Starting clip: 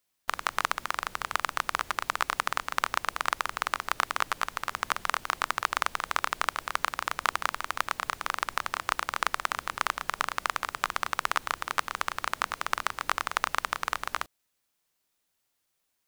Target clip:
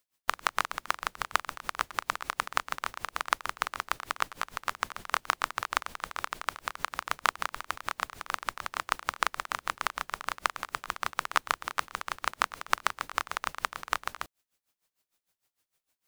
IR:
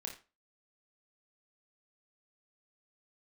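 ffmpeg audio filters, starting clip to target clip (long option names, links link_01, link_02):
-af "aeval=exprs='val(0)*pow(10,-19*(0.5-0.5*cos(2*PI*6.6*n/s))/20)':channel_layout=same,volume=3dB"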